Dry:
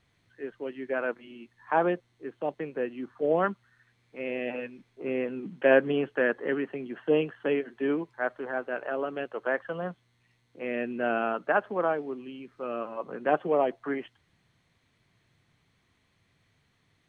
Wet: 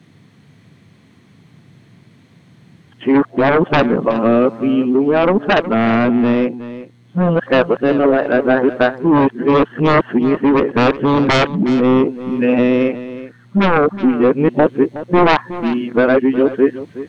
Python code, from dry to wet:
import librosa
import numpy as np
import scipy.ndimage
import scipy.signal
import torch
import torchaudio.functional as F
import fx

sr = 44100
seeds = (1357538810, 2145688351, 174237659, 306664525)

y = np.flip(x).copy()
y = scipy.signal.sosfilt(scipy.signal.butter(4, 85.0, 'highpass', fs=sr, output='sos'), y)
y = fx.peak_eq(y, sr, hz=200.0, db=13.5, octaves=2.2)
y = fx.fold_sine(y, sr, drive_db=10, ceiling_db=-6.5)
y = fx.rider(y, sr, range_db=4, speed_s=0.5)
y = y + 10.0 ** (-14.5 / 20.0) * np.pad(y, (int(367 * sr / 1000.0), 0))[:len(y)]